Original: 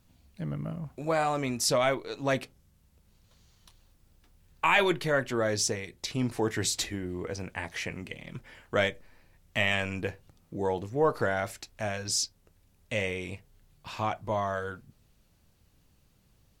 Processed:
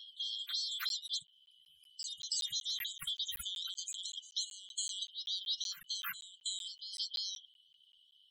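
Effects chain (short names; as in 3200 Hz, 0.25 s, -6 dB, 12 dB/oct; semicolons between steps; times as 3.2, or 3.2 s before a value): four-band scrambler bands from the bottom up 4123; speed mistake 7.5 ips tape played at 15 ips; dynamic EQ 9800 Hz, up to -3 dB, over -49 dBFS, Q 4; loudest bins only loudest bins 64; elliptic band-stop 160–1300 Hz; on a send: reverse echo 0.325 s -15 dB; on the sum: compressor 2.5:1, threshold -37 dBFS, peak gain reduction 11 dB; crackling interface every 0.19 s, samples 512, zero, from 0.89; gain -1.5 dB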